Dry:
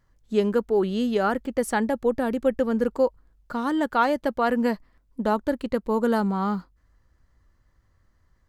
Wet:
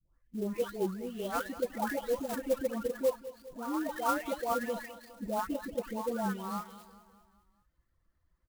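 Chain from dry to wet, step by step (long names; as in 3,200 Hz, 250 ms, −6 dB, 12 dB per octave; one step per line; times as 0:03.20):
every frequency bin delayed by itself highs late, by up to 655 ms
reverb reduction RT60 0.9 s
repeating echo 204 ms, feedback 53%, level −16 dB
converter with an unsteady clock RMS 0.034 ms
level −7 dB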